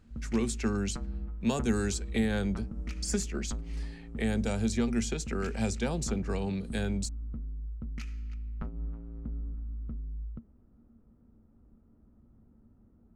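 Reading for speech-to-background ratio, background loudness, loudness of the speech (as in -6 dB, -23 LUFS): 8.0 dB, -40.5 LUFS, -32.5 LUFS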